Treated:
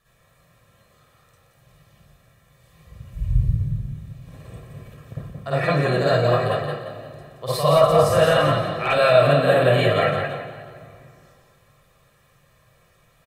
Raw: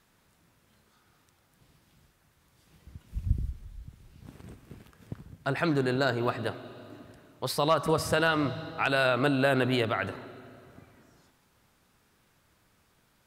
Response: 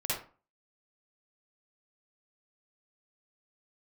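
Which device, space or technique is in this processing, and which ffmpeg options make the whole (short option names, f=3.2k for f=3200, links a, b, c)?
microphone above a desk: -filter_complex "[0:a]equalizer=f=5.2k:w=3.6:g=-5,asplit=6[a][b][c][d][e][f];[b]adelay=174,afreqshift=39,volume=-5dB[g];[c]adelay=348,afreqshift=78,volume=-13.2dB[h];[d]adelay=522,afreqshift=117,volume=-21.4dB[i];[e]adelay=696,afreqshift=156,volume=-29.5dB[j];[f]adelay=870,afreqshift=195,volume=-37.7dB[k];[a][g][h][i][j][k]amix=inputs=6:normalize=0,aecho=1:1:1.7:0.64[l];[1:a]atrim=start_sample=2205[m];[l][m]afir=irnorm=-1:irlink=0"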